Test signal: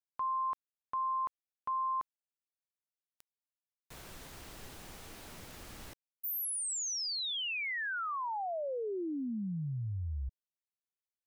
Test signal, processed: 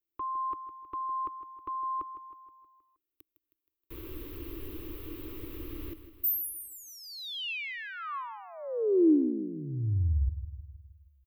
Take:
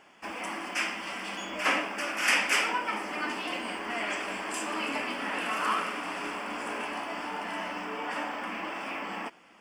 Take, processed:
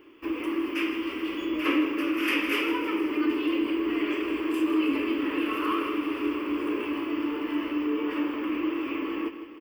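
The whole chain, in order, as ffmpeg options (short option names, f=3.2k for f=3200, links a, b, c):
-filter_complex "[0:a]firequalizer=gain_entry='entry(100,0);entry(180,-23);entry(310,9);entry(720,-26);entry(1100,-9);entry(1500,-17);entry(2700,-9);entry(5300,-23);entry(7900,-28);entry(14000,0)':delay=0.05:min_phase=1,aecho=1:1:158|316|474|632|790|948:0.251|0.141|0.0788|0.0441|0.0247|0.0138,asplit=2[a][b];[b]acompressor=threshold=-32dB:ratio=6:attack=0.25:release=106:knee=6:detection=peak,volume=-2dB[c];[a][c]amix=inputs=2:normalize=0,volume=5.5dB"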